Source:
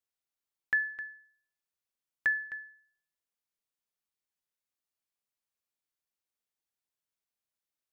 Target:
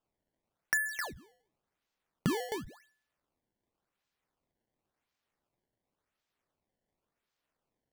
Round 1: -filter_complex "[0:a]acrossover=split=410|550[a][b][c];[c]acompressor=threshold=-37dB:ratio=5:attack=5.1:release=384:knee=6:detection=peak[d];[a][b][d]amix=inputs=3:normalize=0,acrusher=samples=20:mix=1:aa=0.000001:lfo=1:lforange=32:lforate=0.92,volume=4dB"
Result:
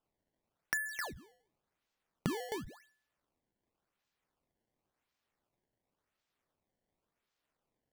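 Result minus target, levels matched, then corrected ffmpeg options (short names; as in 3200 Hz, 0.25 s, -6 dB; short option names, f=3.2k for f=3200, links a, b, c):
compressor: peak gain reduction +5.5 dB
-filter_complex "[0:a]acrossover=split=410|550[a][b][c];[c]acompressor=threshold=-30dB:ratio=5:attack=5.1:release=384:knee=6:detection=peak[d];[a][b][d]amix=inputs=3:normalize=0,acrusher=samples=20:mix=1:aa=0.000001:lfo=1:lforange=32:lforate=0.92,volume=4dB"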